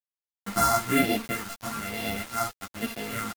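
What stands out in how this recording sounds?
a buzz of ramps at a fixed pitch in blocks of 64 samples
phaser sweep stages 4, 1.1 Hz, lowest notch 450–1,200 Hz
a quantiser's noise floor 6 bits, dither none
a shimmering, thickened sound

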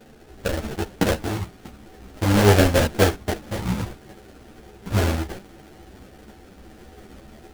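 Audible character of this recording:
aliases and images of a low sample rate 1,100 Hz, jitter 20%
a shimmering, thickened sound

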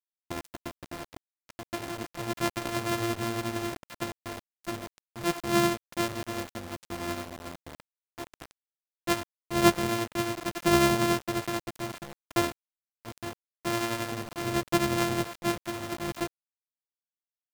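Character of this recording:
a buzz of ramps at a fixed pitch in blocks of 128 samples
tremolo triangle 11 Hz, depth 45%
a quantiser's noise floor 6 bits, dither none

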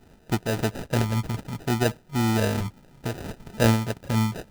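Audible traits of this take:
a quantiser's noise floor 10 bits, dither triangular
phaser sweep stages 8, 0.62 Hz, lowest notch 420–5,000 Hz
aliases and images of a low sample rate 1,100 Hz, jitter 0%
amplitude modulation by smooth noise

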